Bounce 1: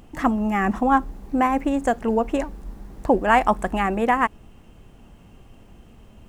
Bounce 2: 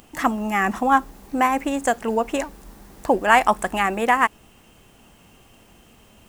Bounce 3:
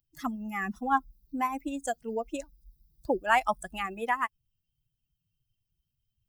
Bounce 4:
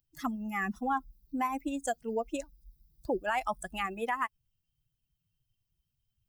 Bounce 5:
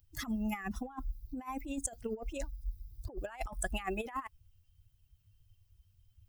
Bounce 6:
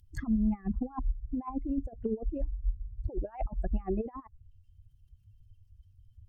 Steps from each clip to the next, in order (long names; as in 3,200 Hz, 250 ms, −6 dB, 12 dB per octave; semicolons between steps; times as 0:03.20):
spectral tilt +2.5 dB per octave; level +2 dB
spectral dynamics exaggerated over time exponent 2; level −6.5 dB
brickwall limiter −20.5 dBFS, peak gain reduction 10.5 dB
low shelf with overshoot 120 Hz +8.5 dB, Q 3; compressor whose output falls as the input rises −38 dBFS, ratio −0.5; level +1.5 dB
spectral envelope exaggerated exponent 1.5; treble cut that deepens with the level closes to 410 Hz, closed at −36.5 dBFS; level +8 dB